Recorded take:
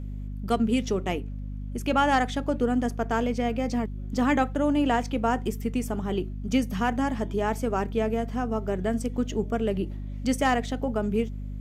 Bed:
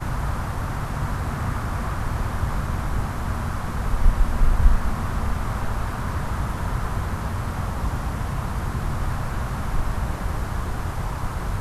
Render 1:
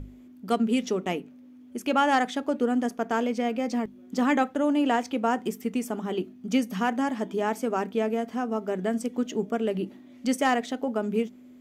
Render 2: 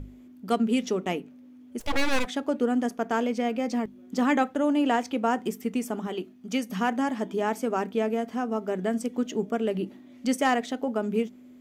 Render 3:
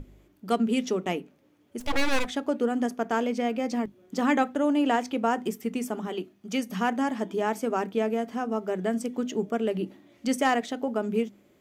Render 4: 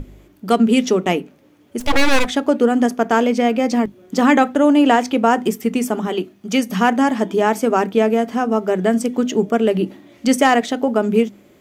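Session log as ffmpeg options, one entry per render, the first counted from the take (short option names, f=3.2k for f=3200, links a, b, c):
-af "bandreject=f=50:t=h:w=6,bandreject=f=100:t=h:w=6,bandreject=f=150:t=h:w=6,bandreject=f=200:t=h:w=6"
-filter_complex "[0:a]asplit=3[a][b][c];[a]afade=t=out:st=1.79:d=0.02[d];[b]aeval=exprs='abs(val(0))':c=same,afade=t=in:st=1.79:d=0.02,afade=t=out:st=2.25:d=0.02[e];[c]afade=t=in:st=2.25:d=0.02[f];[d][e][f]amix=inputs=3:normalize=0,asettb=1/sr,asplit=3[g][h][i];[g]atrim=end=6.074[j];[h]atrim=start=6.07:end=6.7,asetpts=PTS-STARTPTS,afade=t=in:d=0.004:c=qsin,afade=t=out:st=0.626:d=0.004:c=qsin,lowshelf=f=410:g=-6.5[k];[i]atrim=start=6.696[l];[j][k]acrossfade=d=0.004:c1=hsin:c2=qsin[m];[m][l]acrossfade=d=0.004:c1=qsin:c2=hsin"
-af "bandreject=f=50:t=h:w=6,bandreject=f=100:t=h:w=6,bandreject=f=150:t=h:w=6,bandreject=f=200:t=h:w=6,bandreject=f=250:t=h:w=6"
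-af "volume=11dB,alimiter=limit=-3dB:level=0:latency=1"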